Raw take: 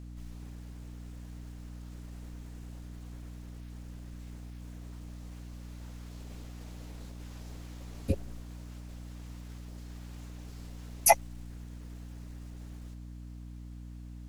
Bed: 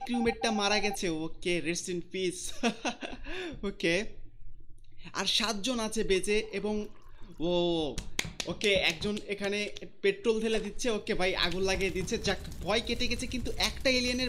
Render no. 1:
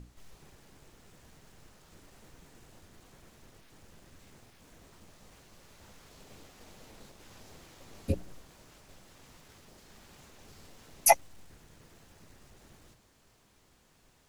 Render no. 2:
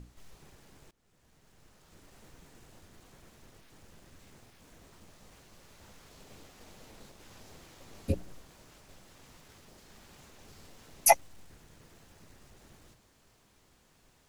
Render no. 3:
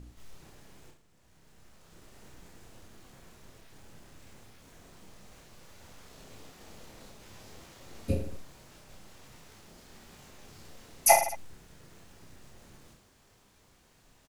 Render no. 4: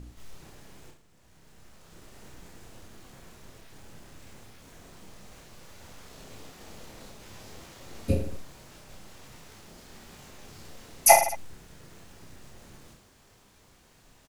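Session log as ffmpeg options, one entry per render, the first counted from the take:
-af "bandreject=f=60:t=h:w=6,bandreject=f=120:t=h:w=6,bandreject=f=180:t=h:w=6,bandreject=f=240:t=h:w=6,bandreject=f=300:t=h:w=6"
-filter_complex "[0:a]asplit=2[a][b];[a]atrim=end=0.91,asetpts=PTS-STARTPTS,afade=t=out:st=0.906:d=0.004:c=hsin:silence=0.0841395[c];[b]atrim=start=0.91,asetpts=PTS-STARTPTS,afade=t=in:d=1.29:silence=0.0841395[d];[c][d]concat=n=2:v=0:a=1"
-af "aecho=1:1:30|66|109.2|161|223.2:0.631|0.398|0.251|0.158|0.1"
-af "volume=4dB"

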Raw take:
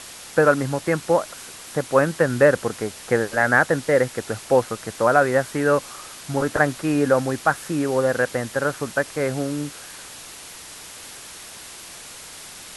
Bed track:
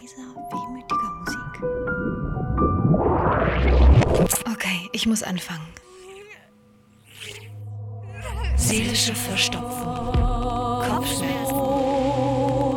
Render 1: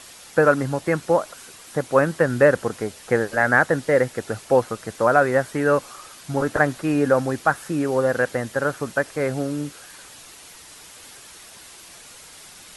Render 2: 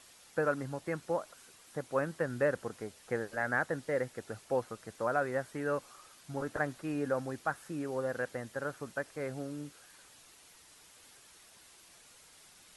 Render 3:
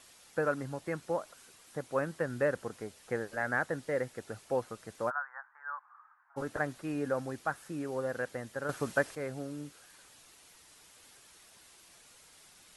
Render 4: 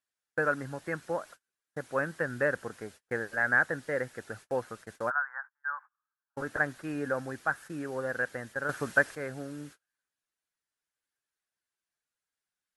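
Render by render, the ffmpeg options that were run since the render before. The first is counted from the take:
-af "afftdn=nr=6:nf=-40"
-af "volume=-14.5dB"
-filter_complex "[0:a]asplit=3[a][b][c];[a]afade=t=out:st=5.09:d=0.02[d];[b]asuperpass=centerf=1200:order=8:qfactor=1.4,afade=t=in:st=5.09:d=0.02,afade=t=out:st=6.36:d=0.02[e];[c]afade=t=in:st=6.36:d=0.02[f];[d][e][f]amix=inputs=3:normalize=0,asplit=3[g][h][i];[g]atrim=end=8.692[j];[h]atrim=start=8.688:end=9.152,asetpts=PTS-STARTPTS,volume=8dB[k];[i]atrim=start=9.148[l];[j][k]acrossfade=d=0.004:c1=hsin:c2=hsin[m];[m][l]acrossfade=d=0.004:c1=hsin:c2=hsin"
-af "agate=range=-35dB:threshold=-49dB:ratio=16:detection=peak,equalizer=f=1.6k:t=o:w=0.5:g=9"

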